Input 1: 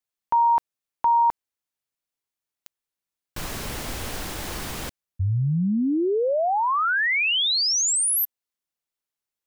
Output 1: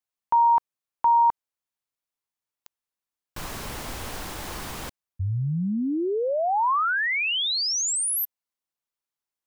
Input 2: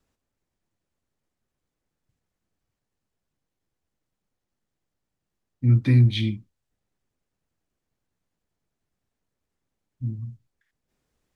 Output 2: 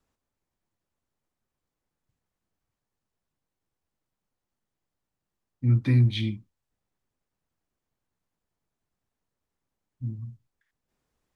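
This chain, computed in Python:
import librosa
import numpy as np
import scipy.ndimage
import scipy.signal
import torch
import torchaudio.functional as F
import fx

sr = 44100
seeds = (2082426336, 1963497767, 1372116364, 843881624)

y = fx.peak_eq(x, sr, hz=1000.0, db=4.0, octaves=0.95)
y = F.gain(torch.from_numpy(y), -3.5).numpy()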